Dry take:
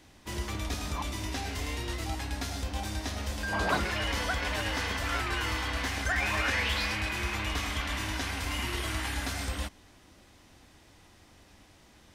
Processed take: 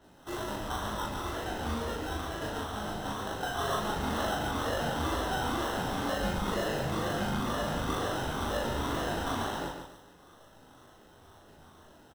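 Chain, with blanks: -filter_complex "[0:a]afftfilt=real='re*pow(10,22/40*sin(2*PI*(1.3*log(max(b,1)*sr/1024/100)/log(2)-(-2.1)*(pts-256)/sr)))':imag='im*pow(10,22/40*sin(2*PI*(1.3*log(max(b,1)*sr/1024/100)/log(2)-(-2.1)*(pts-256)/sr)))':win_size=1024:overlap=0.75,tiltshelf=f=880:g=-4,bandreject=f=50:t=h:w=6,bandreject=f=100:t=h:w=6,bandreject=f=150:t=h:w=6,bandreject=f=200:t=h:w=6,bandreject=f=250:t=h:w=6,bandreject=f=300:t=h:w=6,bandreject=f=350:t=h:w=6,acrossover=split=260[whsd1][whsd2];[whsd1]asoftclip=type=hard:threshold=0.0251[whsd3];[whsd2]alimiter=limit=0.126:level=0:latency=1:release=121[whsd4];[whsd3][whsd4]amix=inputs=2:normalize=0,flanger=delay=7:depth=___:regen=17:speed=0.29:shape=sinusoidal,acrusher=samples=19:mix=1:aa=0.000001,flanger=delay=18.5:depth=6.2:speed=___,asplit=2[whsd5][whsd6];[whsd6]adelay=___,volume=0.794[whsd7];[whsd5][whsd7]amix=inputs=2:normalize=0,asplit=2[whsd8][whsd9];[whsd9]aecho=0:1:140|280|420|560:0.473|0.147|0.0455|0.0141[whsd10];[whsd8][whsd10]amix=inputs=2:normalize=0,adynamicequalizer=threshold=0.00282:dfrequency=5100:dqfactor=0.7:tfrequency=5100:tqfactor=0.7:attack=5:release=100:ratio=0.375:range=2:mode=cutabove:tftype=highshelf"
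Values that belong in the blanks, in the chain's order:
6, 2.1, 39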